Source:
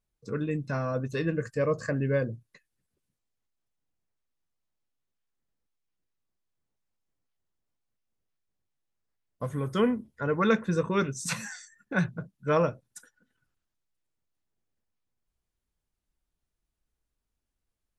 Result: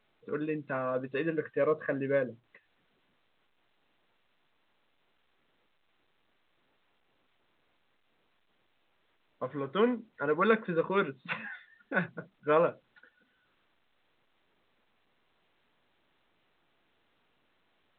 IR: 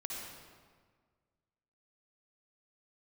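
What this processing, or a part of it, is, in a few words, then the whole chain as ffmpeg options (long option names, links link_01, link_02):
telephone: -af "highpass=280,lowpass=3500" -ar 8000 -c:a pcm_alaw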